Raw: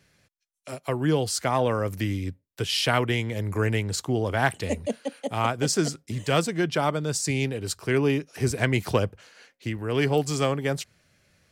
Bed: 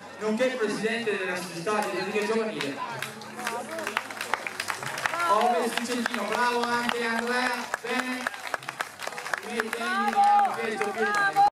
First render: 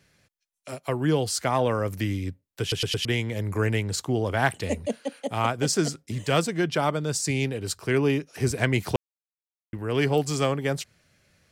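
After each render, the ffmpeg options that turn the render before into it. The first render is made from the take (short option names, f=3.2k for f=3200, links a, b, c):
-filter_complex "[0:a]asplit=7[a][b][c][d][e][f][g];[a]atrim=end=2.722[h];[b]atrim=start=2.608:end=2.722[i];[c]atrim=start=2.608:end=2.722[j];[d]atrim=start=2.608:end=2.722[k];[e]atrim=start=3.048:end=8.96,asetpts=PTS-STARTPTS,afade=t=out:st=5.908:d=0.004:c=hsin[l];[f]atrim=start=8.96:end=9.73,asetpts=PTS-STARTPTS,volume=0[m];[g]atrim=start=9.73,asetpts=PTS-STARTPTS,afade=t=in:d=0.004:c=hsin[n];[h][i]acrossfade=d=0.004:c1=hsin:c2=hsin[o];[o][j]acrossfade=d=0.004:c1=hsin:c2=hsin[p];[p][k]acrossfade=d=0.004:c1=hsin:c2=hsin[q];[l][m][n]concat=n=3:v=0:a=1[r];[q][r]acrossfade=d=0.004:c1=hsin:c2=hsin"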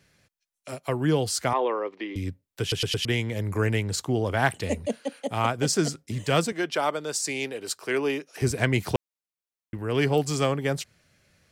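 -filter_complex "[0:a]asettb=1/sr,asplit=3[a][b][c];[a]atrim=end=1.534[d];[b]atrim=start=1.53:end=2.16,asetpts=PTS-STARTPTS,afade=t=in:d=0.004:c=qsin,afade=t=out:st=0.626:d=0.004:c=qsin,highpass=f=340:w=0.5412,highpass=f=340:w=1.3066,equalizer=f=370:t=q:w=4:g=5,equalizer=f=620:t=q:w=4:g=-6,equalizer=f=1k:t=q:w=4:g=4,equalizer=f=1.5k:t=q:w=4:g=-9,equalizer=f=2.7k:t=q:w=4:g=-3,lowpass=f=3.3k:w=0.5412,lowpass=f=3.3k:w=1.3066[e];[c]atrim=start=2.156[f];[d][e]acrossfade=d=0.004:c1=hsin:c2=qsin[g];[g][f]acrossfade=d=0.004:c1=qsin:c2=hsin,asettb=1/sr,asplit=3[h][i][j];[h]atrim=end=6.524[k];[i]atrim=start=6.52:end=8.42,asetpts=PTS-STARTPTS,afade=t=in:d=0.004:c=qsin,afade=t=out:st=1.896:d=0.004:c=qsin,highpass=360[l];[j]atrim=start=8.416[m];[k][l]acrossfade=d=0.004:c1=hsin:c2=qsin[n];[n][m]acrossfade=d=0.004:c1=qsin:c2=hsin"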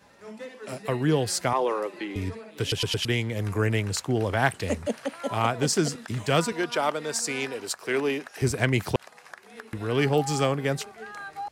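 -filter_complex "[1:a]volume=-15dB[a];[0:a][a]amix=inputs=2:normalize=0"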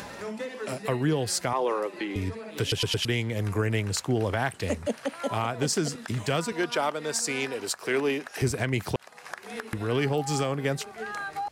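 -af "acompressor=mode=upward:threshold=-27dB:ratio=2.5,alimiter=limit=-15.5dB:level=0:latency=1:release=181"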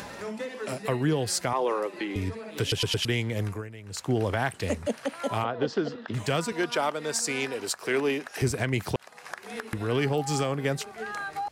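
-filter_complex "[0:a]asplit=3[a][b][c];[a]afade=t=out:st=5.43:d=0.02[d];[b]highpass=140,equalizer=f=160:t=q:w=4:g=-7,equalizer=f=490:t=q:w=4:g=5,equalizer=f=2.3k:t=q:w=4:g=-9,lowpass=f=3.7k:w=0.5412,lowpass=f=3.7k:w=1.3066,afade=t=in:st=5.43:d=0.02,afade=t=out:st=6.13:d=0.02[e];[c]afade=t=in:st=6.13:d=0.02[f];[d][e][f]amix=inputs=3:normalize=0,asplit=2[g][h];[g]atrim=end=3.76,asetpts=PTS-STARTPTS,afade=t=out:st=3.43:d=0.33:c=qua:silence=0.133352[i];[h]atrim=start=3.76,asetpts=PTS-STARTPTS,afade=t=in:d=0.33:c=qua:silence=0.133352[j];[i][j]concat=n=2:v=0:a=1"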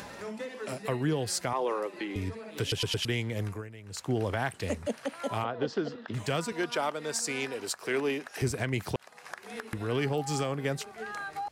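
-af "volume=-3.5dB"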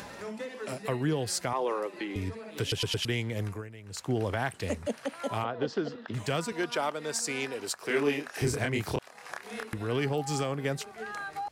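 -filter_complex "[0:a]asettb=1/sr,asplit=3[a][b][c];[a]atrim=end=7.864[d];[b]atrim=start=7.86:end=9.66,asetpts=PTS-STARTPTS,afade=t=in:d=0.004:c=qsin,afade=t=out:st=1.796:d=0.004:c=qsin,asplit=2[e][f];[f]adelay=28,volume=-2dB[g];[e][g]amix=inputs=2:normalize=0,atrim=end_sample=79380[h];[c]atrim=start=9.656[i];[d][h]acrossfade=d=0.004:c1=hsin:c2=qsin[j];[j][i]acrossfade=d=0.004:c1=qsin:c2=hsin"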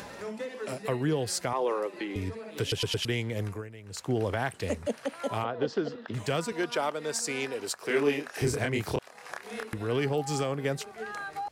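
-af "equalizer=f=470:t=o:w=0.77:g=2.5"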